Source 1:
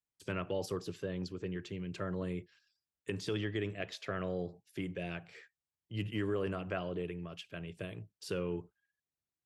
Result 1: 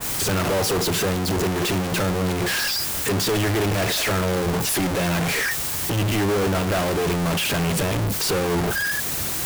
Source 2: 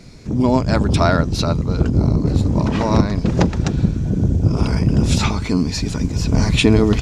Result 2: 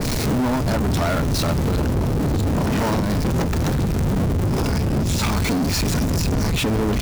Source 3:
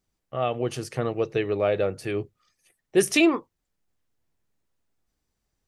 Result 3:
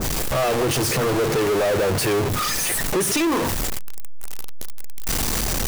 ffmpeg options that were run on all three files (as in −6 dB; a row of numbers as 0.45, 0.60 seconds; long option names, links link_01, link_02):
-af "aeval=exprs='val(0)+0.5*0.0841*sgn(val(0))':channel_layout=same,bandreject=frequency=60:width_type=h:width=6,bandreject=frequency=120:width_type=h:width=6,bandreject=frequency=180:width_type=h:width=6,acompressor=threshold=-17dB:ratio=6,highshelf=frequency=6200:gain=6.5,asoftclip=type=tanh:threshold=-24.5dB,adynamicequalizer=threshold=0.00891:dfrequency=1900:dqfactor=0.7:tfrequency=1900:tqfactor=0.7:attack=5:release=100:ratio=0.375:range=1.5:mode=cutabove:tftype=highshelf,volume=7dB"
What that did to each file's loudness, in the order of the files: +17.5, −3.5, +4.5 LU